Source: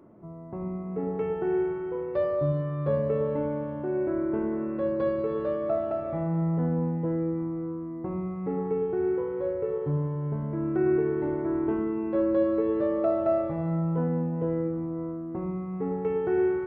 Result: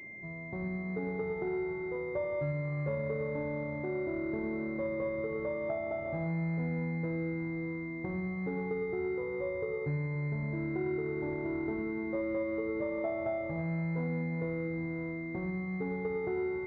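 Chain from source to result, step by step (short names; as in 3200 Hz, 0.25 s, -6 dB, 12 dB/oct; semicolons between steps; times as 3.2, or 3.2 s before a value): bell 330 Hz -4.5 dB 1.4 oct; compressor 3:1, threshold -32 dBFS, peak gain reduction 8 dB; pulse-width modulation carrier 2100 Hz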